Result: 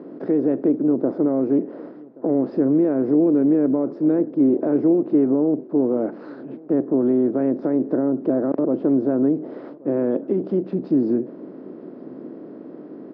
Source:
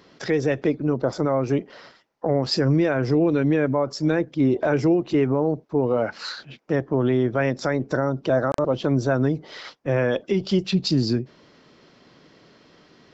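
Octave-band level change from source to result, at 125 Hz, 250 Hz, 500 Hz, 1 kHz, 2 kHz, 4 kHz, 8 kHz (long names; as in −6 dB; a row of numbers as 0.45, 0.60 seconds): −8.5 dB, +5.0 dB, +0.5 dB, −6.5 dB, below −15 dB, below −30 dB, can't be measured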